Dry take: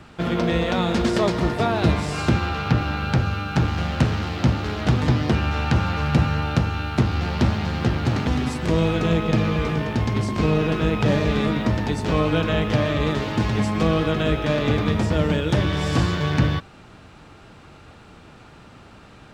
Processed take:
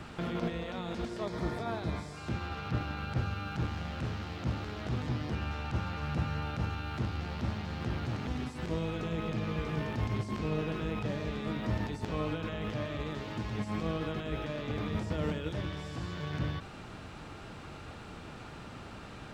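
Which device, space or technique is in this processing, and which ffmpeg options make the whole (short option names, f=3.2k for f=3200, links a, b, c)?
de-esser from a sidechain: -filter_complex "[0:a]asplit=2[a][b];[b]highpass=5.3k,apad=whole_len=852466[c];[a][c]sidechaincompress=threshold=-57dB:ratio=12:attack=3.5:release=26,asettb=1/sr,asplit=3[d][e][f];[d]atrim=end=1.254[g];[e]atrim=start=1.25:end=2.17,asetpts=PTS-STARTPTS,afade=t=in:d=0.004:c=qsin,afade=t=out:st=0.916:d=0.004:c=qsin,bandreject=f=2.8k:w=6.4[h];[f]atrim=start=2.166[i];[g][h]acrossfade=d=0.004:c1=hsin:c2=qsin[j];[j][i]acrossfade=d=0.004:c1=qsin:c2=hsin"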